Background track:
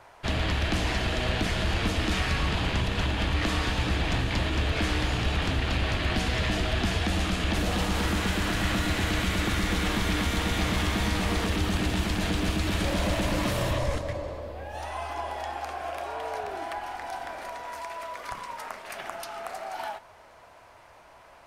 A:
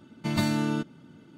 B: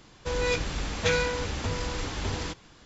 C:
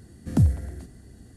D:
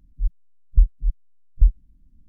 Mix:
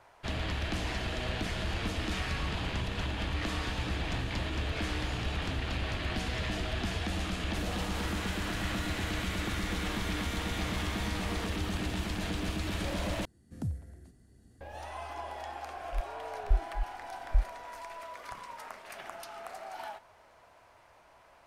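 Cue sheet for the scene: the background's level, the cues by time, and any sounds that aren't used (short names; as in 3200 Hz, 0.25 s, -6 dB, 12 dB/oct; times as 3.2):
background track -7 dB
13.25 replace with C -16 dB + recorder AGC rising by 6 dB/s
15.73 add D -11.5 dB
not used: A, B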